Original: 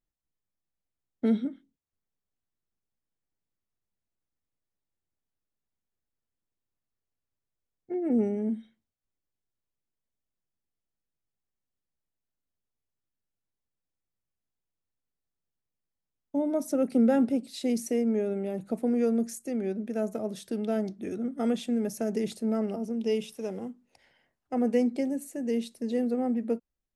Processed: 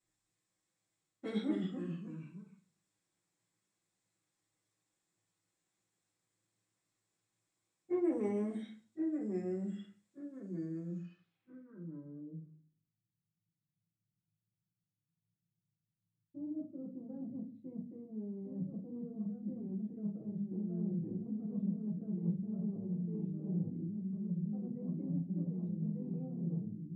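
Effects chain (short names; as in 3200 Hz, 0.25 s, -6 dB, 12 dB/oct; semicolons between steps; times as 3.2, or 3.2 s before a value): dynamic EQ 180 Hz, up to -6 dB, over -41 dBFS, Q 1.3; reverse; compressor 5:1, threshold -36 dBFS, peak gain reduction 13.5 dB; reverse; echoes that change speed 0.1 s, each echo -2 st, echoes 3, each echo -6 dB; low-pass sweep 8100 Hz -> 150 Hz, 10.83–12.94; added harmonics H 5 -28 dB, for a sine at -28.5 dBFS; reverb RT60 0.35 s, pre-delay 3 ms, DRR -10 dB; gain -3 dB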